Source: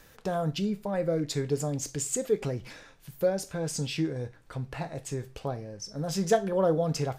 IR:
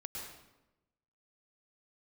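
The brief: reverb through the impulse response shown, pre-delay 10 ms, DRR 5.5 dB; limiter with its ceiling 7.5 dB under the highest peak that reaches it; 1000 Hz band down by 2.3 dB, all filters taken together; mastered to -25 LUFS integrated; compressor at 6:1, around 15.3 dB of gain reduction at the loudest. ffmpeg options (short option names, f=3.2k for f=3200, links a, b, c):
-filter_complex "[0:a]equalizer=f=1k:t=o:g=-4,acompressor=threshold=-37dB:ratio=6,alimiter=level_in=8.5dB:limit=-24dB:level=0:latency=1,volume=-8.5dB,asplit=2[a][b];[1:a]atrim=start_sample=2205,adelay=10[c];[b][c]afir=irnorm=-1:irlink=0,volume=-4.5dB[d];[a][d]amix=inputs=2:normalize=0,volume=16.5dB"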